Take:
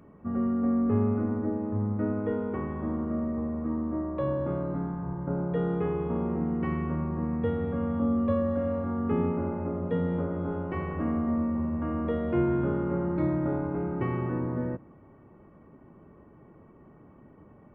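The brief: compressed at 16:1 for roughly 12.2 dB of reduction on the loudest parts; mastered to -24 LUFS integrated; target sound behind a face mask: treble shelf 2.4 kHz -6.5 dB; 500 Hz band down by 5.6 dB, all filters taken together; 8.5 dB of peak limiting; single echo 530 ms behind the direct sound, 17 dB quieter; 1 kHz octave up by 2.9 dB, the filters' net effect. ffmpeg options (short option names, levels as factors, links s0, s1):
-af "equalizer=f=500:t=o:g=-8.5,equalizer=f=1000:t=o:g=7,acompressor=threshold=0.0178:ratio=16,alimiter=level_in=3.16:limit=0.0631:level=0:latency=1,volume=0.316,highshelf=f=2400:g=-6.5,aecho=1:1:530:0.141,volume=8.41"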